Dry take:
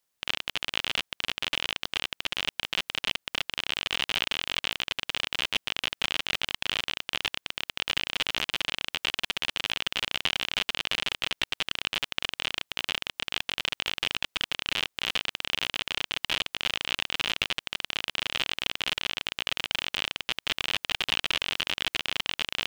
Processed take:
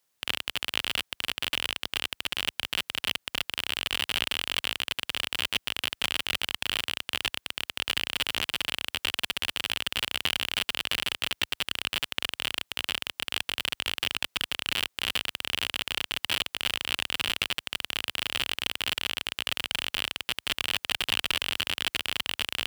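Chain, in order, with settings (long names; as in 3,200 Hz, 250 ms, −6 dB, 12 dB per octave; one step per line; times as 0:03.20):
high-pass filter 53 Hz 12 dB per octave
in parallel at −5.5 dB: wrap-around overflow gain 21 dB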